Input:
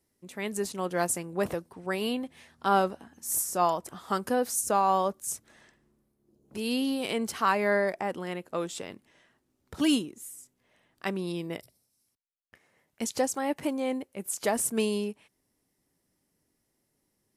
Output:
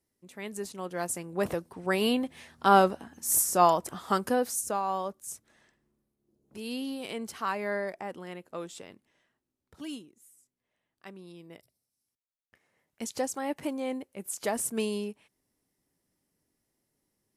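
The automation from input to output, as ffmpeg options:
-af "volume=16dB,afade=t=in:st=1.02:d=0.99:silence=0.334965,afade=t=out:st=3.9:d=0.9:silence=0.298538,afade=t=out:st=8.68:d=1.15:silence=0.375837,afade=t=in:st=11.37:d=2.09:silence=0.251189"

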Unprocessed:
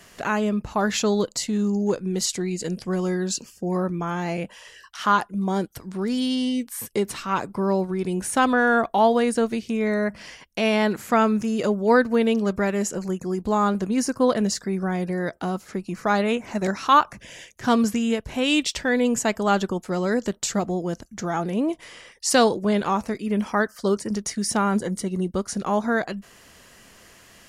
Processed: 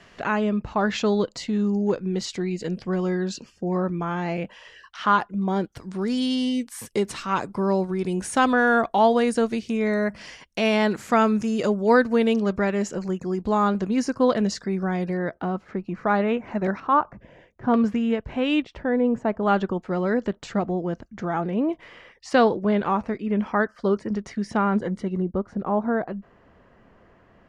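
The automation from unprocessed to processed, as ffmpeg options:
-af "asetnsamples=n=441:p=0,asendcmd='5.77 lowpass f 8200;12.4 lowpass f 4800;15.17 lowpass f 2100;16.8 lowpass f 1000;17.74 lowpass f 2200;18.62 lowpass f 1100;19.43 lowpass f 2400;25.22 lowpass f 1100',lowpass=3.7k"

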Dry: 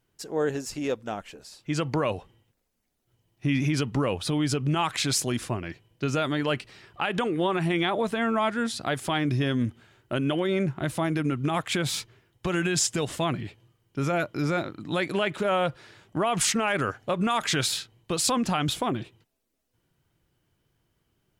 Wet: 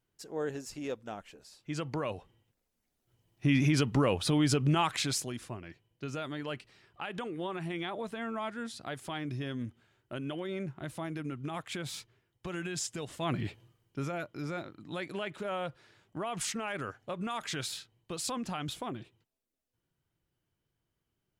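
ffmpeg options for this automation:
-af "volume=11.5dB,afade=t=in:st=2.11:d=1.45:silence=0.421697,afade=t=out:st=4.67:d=0.66:silence=0.298538,afade=t=in:st=13.19:d=0.27:silence=0.237137,afade=t=out:st=13.46:d=0.66:silence=0.251189"

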